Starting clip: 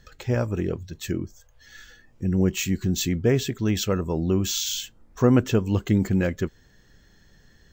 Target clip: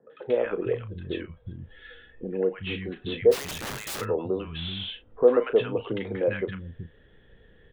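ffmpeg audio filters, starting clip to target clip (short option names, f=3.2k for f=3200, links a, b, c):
-filter_complex "[0:a]equalizer=f=470:t=o:w=0.48:g=11,acrossover=split=190|1000[a][b][c];[c]adelay=100[d];[a]adelay=380[e];[e][b][d]amix=inputs=3:normalize=0,acrossover=split=420|1100[f][g][h];[f]acompressor=threshold=-35dB:ratio=6[i];[h]asoftclip=type=tanh:threshold=-25.5dB[j];[i][g][j]amix=inputs=3:normalize=0,aresample=8000,aresample=44100,asplit=3[k][l][m];[k]afade=t=out:st=3.31:d=0.02[n];[l]aeval=exprs='(mod(28.2*val(0)+1,2)-1)/28.2':c=same,afade=t=in:st=3.31:d=0.02,afade=t=out:st=4:d=0.02[o];[m]afade=t=in:st=4:d=0.02[p];[n][o][p]amix=inputs=3:normalize=0,asplit=2[q][r];[r]adelay=36,volume=-11.5dB[s];[q][s]amix=inputs=2:normalize=0"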